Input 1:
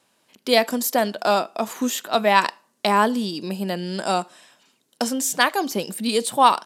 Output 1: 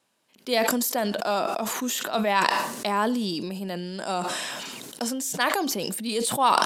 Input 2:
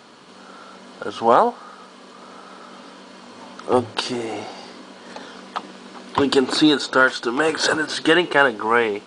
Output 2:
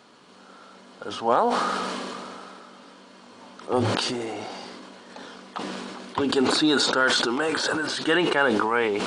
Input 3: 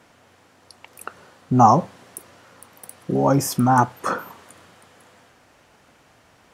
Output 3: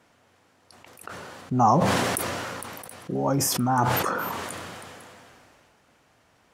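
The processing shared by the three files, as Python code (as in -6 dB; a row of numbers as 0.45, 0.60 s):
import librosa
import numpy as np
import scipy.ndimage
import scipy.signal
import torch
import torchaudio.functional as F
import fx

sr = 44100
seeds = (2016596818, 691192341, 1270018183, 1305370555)

y = fx.sustainer(x, sr, db_per_s=21.0)
y = F.gain(torch.from_numpy(y), -7.0).numpy()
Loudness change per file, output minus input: -4.0, -5.0, -5.5 LU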